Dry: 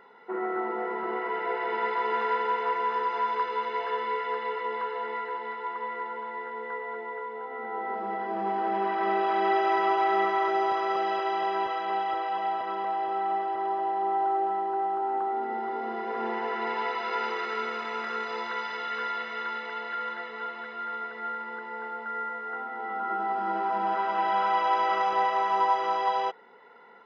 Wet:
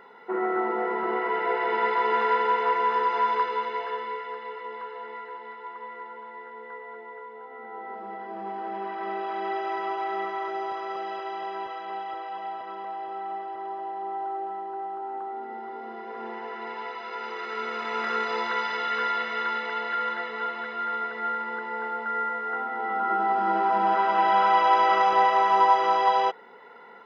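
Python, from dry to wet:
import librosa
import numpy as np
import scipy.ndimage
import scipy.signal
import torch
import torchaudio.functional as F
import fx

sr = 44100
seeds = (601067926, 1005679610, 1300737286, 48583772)

y = fx.gain(x, sr, db=fx.line((3.33, 4.0), (4.36, -5.5), (17.18, -5.5), (18.08, 5.0)))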